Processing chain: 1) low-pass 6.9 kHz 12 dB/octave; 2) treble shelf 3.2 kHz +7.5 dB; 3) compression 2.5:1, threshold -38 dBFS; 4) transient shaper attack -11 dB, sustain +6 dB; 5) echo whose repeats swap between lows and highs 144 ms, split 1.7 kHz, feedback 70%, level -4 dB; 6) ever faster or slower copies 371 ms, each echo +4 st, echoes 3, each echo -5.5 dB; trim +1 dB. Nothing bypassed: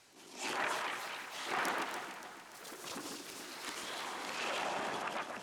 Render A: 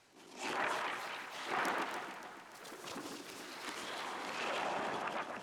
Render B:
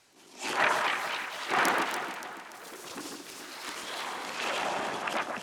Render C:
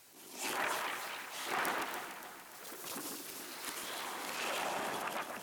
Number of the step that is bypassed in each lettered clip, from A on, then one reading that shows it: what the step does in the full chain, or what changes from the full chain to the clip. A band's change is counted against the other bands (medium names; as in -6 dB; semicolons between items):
2, 8 kHz band -5.0 dB; 3, mean gain reduction 4.5 dB; 1, 8 kHz band +3.0 dB